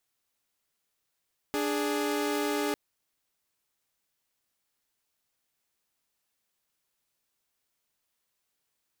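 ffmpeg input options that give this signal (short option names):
-f lavfi -i "aevalsrc='0.0422*((2*mod(293.66*t,1)-1)+(2*mod(415.3*t,1)-1))':d=1.2:s=44100"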